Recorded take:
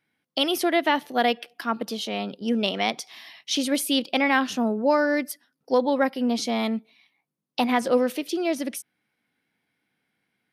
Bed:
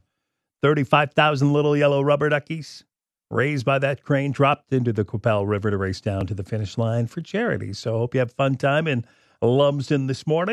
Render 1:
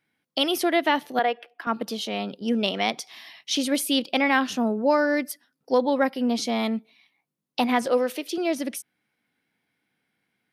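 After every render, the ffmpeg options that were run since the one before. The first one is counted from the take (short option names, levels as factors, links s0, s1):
-filter_complex "[0:a]asettb=1/sr,asplit=3[s0][s1][s2];[s0]atrim=end=1.194[s3];[s1]atrim=start=1.19:end=1.67,asetpts=PTS-STARTPTS,afade=t=in:d=0.004:c=qsin,afade=t=out:st=0.476:d=0.004:c=qsin,acrossover=split=330 2500:gain=0.0708 1 0.158[s4][s5][s6];[s4][s5][s6]amix=inputs=3:normalize=0[s7];[s2]atrim=start=1.666[s8];[s3][s7]acrossfade=d=0.004:c1=hsin:c2=qsin[s9];[s9][s8]acrossfade=d=0.004:c1=qsin:c2=hsin,asettb=1/sr,asplit=3[s10][s11][s12];[s10]atrim=end=7.864[s13];[s11]atrim=start=7.86:end=8.38,asetpts=PTS-STARTPTS,afade=t=in:d=0.004:c=qsin,afade=t=out:st=0.516:d=0.004:c=qsin,highpass=320[s14];[s12]atrim=start=8.376[s15];[s13][s14]acrossfade=d=0.004:c1=hsin:c2=qsin[s16];[s16][s15]acrossfade=d=0.004:c1=qsin:c2=hsin"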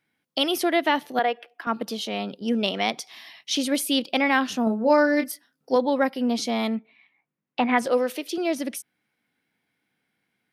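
-filter_complex "[0:a]asettb=1/sr,asplit=3[s0][s1][s2];[s0]atrim=end=4.644[s3];[s1]atrim=start=4.64:end=5.76,asetpts=PTS-STARTPTS,afade=t=in:d=0.004:c=qsin,afade=t=out:st=1.116:d=0.004:c=qsin,asplit=2[s4][s5];[s5]adelay=27,volume=0.501[s6];[s4][s6]amix=inputs=2:normalize=0,atrim=end_sample=49392[s7];[s2]atrim=start=5.756[s8];[s3][s7]acrossfade=d=0.004:c1=hsin:c2=qsin[s9];[s9][s8]acrossfade=d=0.004:c1=qsin:c2=hsin,asettb=1/sr,asplit=3[s10][s11][s12];[s10]atrim=end=6.754[s13];[s11]atrim=start=6.75:end=7.78,asetpts=PTS-STARTPTS,afade=t=in:d=0.004:c=qsin,afade=t=out:st=1.026:d=0.004:c=qsin,lowpass=f=2100:t=q:w=1.6[s14];[s12]atrim=start=7.776[s15];[s13][s14]acrossfade=d=0.004:c1=hsin:c2=qsin[s16];[s16][s15]acrossfade=d=0.004:c1=qsin:c2=hsin"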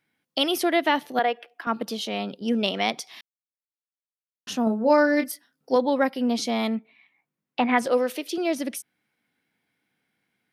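-filter_complex "[0:a]asplit=3[s0][s1][s2];[s0]atrim=end=3.21,asetpts=PTS-STARTPTS,afade=t=out:st=3.206:d=0.004:c=hsin[s3];[s1]atrim=start=3.21:end=4.47,asetpts=PTS-STARTPTS,volume=0[s4];[s2]atrim=start=4.47,asetpts=PTS-STARTPTS,afade=t=in:d=0.004:c=hsin[s5];[s3][s4][s5]concat=n=3:v=0:a=1"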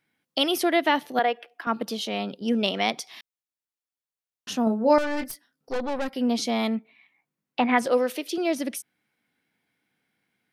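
-filter_complex "[0:a]asettb=1/sr,asplit=3[s0][s1][s2];[s0]atrim=end=4.984[s3];[s1]atrim=start=4.98:end=6.14,asetpts=PTS-STARTPTS,afade=t=in:d=0.004:c=qsin,afade=t=out:st=1.156:d=0.004:c=qsin,aeval=exprs='(tanh(17.8*val(0)+0.6)-tanh(0.6))/17.8':c=same[s4];[s2]atrim=start=6.136[s5];[s3][s4]acrossfade=d=0.004:c1=hsin:c2=qsin[s6];[s6][s5]acrossfade=d=0.004:c1=qsin:c2=hsin"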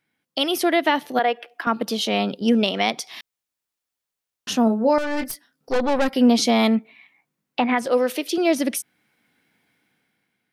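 -af "dynaudnorm=f=220:g=7:m=2.99,alimiter=limit=0.376:level=0:latency=1:release=399"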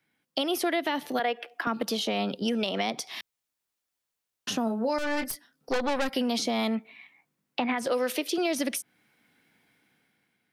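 -filter_complex "[0:a]acrossover=split=130|3600[s0][s1][s2];[s1]alimiter=limit=0.211:level=0:latency=1:release=106[s3];[s0][s3][s2]amix=inputs=3:normalize=0,acrossover=split=600|1300[s4][s5][s6];[s4]acompressor=threshold=0.0355:ratio=4[s7];[s5]acompressor=threshold=0.0224:ratio=4[s8];[s6]acompressor=threshold=0.0282:ratio=4[s9];[s7][s8][s9]amix=inputs=3:normalize=0"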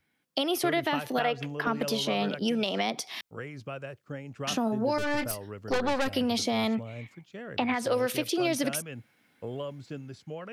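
-filter_complex "[1:a]volume=0.119[s0];[0:a][s0]amix=inputs=2:normalize=0"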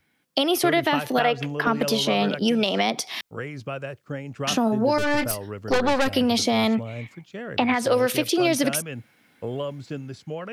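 -af "volume=2.11"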